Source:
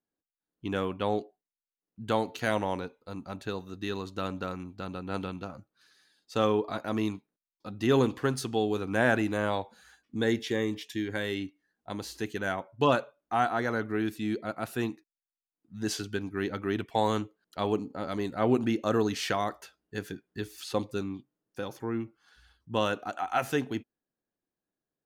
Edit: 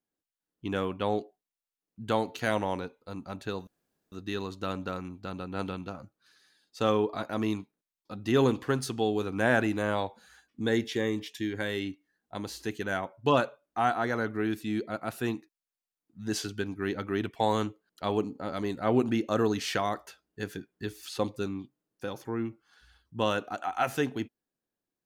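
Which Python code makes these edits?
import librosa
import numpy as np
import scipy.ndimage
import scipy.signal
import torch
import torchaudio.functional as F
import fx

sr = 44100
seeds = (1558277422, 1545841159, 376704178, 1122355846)

y = fx.edit(x, sr, fx.insert_room_tone(at_s=3.67, length_s=0.45), tone=tone)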